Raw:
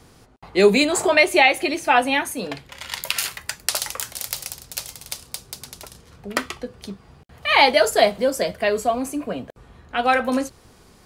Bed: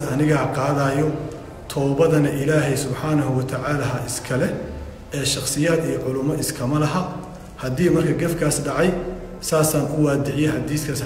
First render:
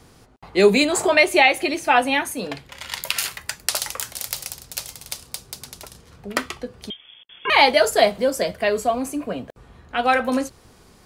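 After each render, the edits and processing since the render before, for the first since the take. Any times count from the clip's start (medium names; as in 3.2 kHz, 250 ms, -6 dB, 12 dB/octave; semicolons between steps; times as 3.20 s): 6.90–7.50 s: frequency inversion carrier 3.4 kHz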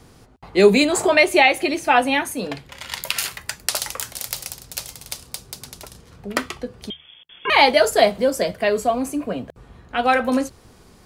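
bass shelf 480 Hz +3 dB; de-hum 77.2 Hz, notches 2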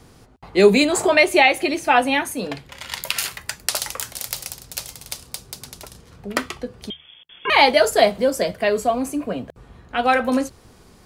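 no audible change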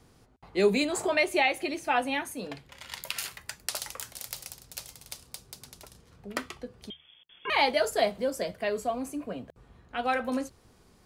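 trim -10.5 dB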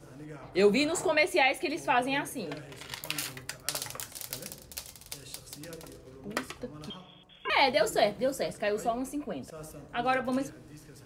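add bed -27 dB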